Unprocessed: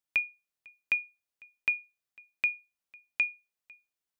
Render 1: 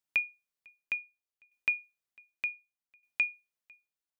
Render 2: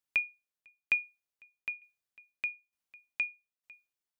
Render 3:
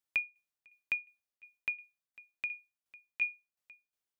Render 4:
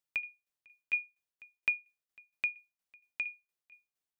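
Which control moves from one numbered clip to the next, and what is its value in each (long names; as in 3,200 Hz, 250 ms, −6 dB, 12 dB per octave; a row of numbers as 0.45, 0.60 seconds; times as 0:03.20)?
shaped tremolo, speed: 0.66, 1.1, 2.8, 4.3 Hertz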